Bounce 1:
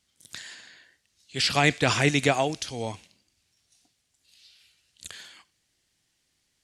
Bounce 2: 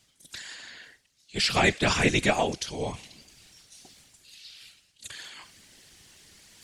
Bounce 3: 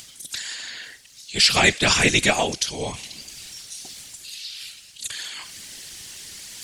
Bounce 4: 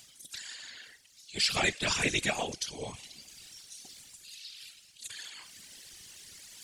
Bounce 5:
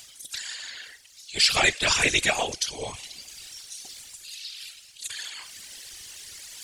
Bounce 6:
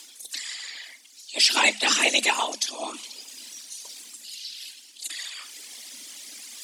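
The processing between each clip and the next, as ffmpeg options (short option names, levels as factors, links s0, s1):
-af "areverse,acompressor=mode=upward:threshold=0.0141:ratio=2.5,areverse,afftfilt=real='hypot(re,im)*cos(2*PI*random(0))':imag='hypot(re,im)*sin(2*PI*random(1))':win_size=512:overlap=0.75,volume=1.88"
-filter_complex "[0:a]highshelf=f=2300:g=10,asplit=2[s0][s1];[s1]acompressor=mode=upward:threshold=0.0398:ratio=2.5,volume=1.19[s2];[s0][s2]amix=inputs=2:normalize=0,volume=0.562"
-af "afftfilt=real='hypot(re,im)*cos(2*PI*random(0))':imag='hypot(re,im)*sin(2*PI*random(1))':win_size=512:overlap=0.75,volume=0.422"
-af "equalizer=f=190:w=0.78:g=-9,volume=2.51"
-af "afreqshift=210,volume=1.12"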